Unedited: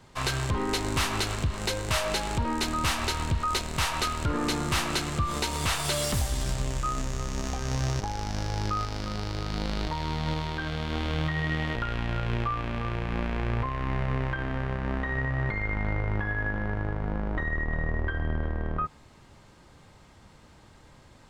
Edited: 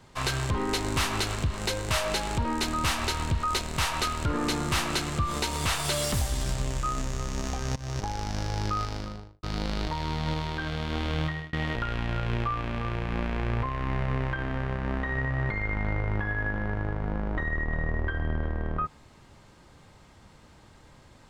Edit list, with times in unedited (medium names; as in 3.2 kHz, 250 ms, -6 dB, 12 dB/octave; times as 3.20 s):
7.76–8.04 s: fade in, from -20.5 dB
8.87–9.43 s: studio fade out
11.24–11.53 s: fade out